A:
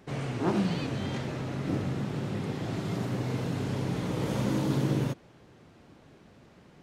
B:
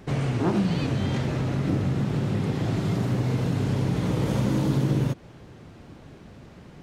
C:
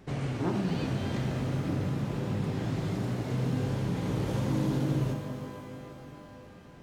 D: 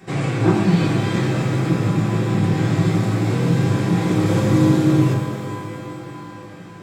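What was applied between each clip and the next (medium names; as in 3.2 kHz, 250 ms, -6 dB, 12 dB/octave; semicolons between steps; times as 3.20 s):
bass shelf 140 Hz +8.5 dB; compression 2:1, threshold -30 dBFS, peak gain reduction 6.5 dB; trim +6.5 dB
pitch-shifted reverb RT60 2.9 s, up +12 st, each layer -8 dB, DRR 5.5 dB; trim -7 dB
reverberation RT60 0.40 s, pre-delay 3 ms, DRR -6.5 dB; trim +8.5 dB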